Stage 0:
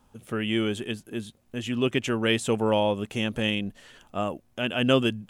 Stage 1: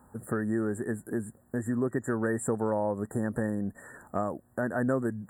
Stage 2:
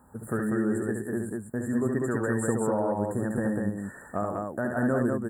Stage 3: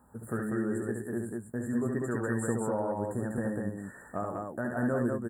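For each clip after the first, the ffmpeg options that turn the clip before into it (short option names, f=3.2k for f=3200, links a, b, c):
-af "highpass=60,afftfilt=real='re*(1-between(b*sr/4096,1900,7100))':imag='im*(1-between(b*sr/4096,1900,7100))':win_size=4096:overlap=0.75,acompressor=threshold=-34dB:ratio=3,volume=5.5dB"
-af "aecho=1:1:69.97|195.3:0.562|0.708"
-filter_complex "[0:a]asplit=2[a][b];[b]adelay=17,volume=-11dB[c];[a][c]amix=inputs=2:normalize=0,volume=-4.5dB"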